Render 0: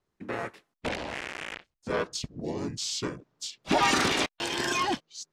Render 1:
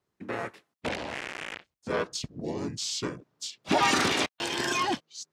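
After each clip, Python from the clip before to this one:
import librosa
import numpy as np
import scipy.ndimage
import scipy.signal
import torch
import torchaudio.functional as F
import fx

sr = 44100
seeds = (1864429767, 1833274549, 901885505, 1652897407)

y = scipy.signal.sosfilt(scipy.signal.butter(2, 68.0, 'highpass', fs=sr, output='sos'), x)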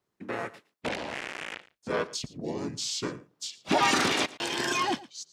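y = fx.peak_eq(x, sr, hz=72.0, db=-5.5, octaves=1.2)
y = y + 10.0 ** (-19.5 / 20.0) * np.pad(y, (int(113 * sr / 1000.0), 0))[:len(y)]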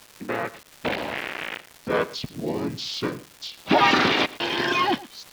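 y = scipy.signal.sosfilt(scipy.signal.butter(4, 4400.0, 'lowpass', fs=sr, output='sos'), x)
y = fx.dmg_crackle(y, sr, seeds[0], per_s=540.0, level_db=-40.0)
y = F.gain(torch.from_numpy(y), 6.0).numpy()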